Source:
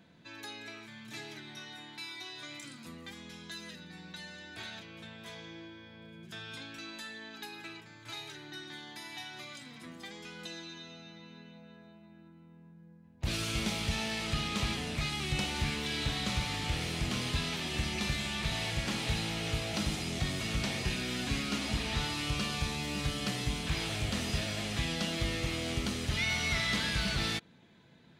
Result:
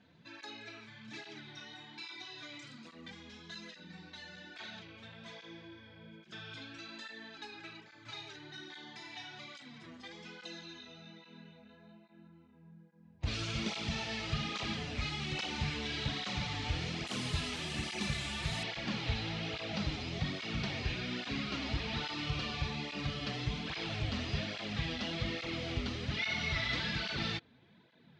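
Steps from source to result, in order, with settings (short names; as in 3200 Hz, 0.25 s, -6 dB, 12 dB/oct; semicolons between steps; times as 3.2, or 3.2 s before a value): LPF 6100 Hz 24 dB/oct, from 17.07 s 10000 Hz, from 18.63 s 5000 Hz; tape flanging out of phase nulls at 1.2 Hz, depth 6.3 ms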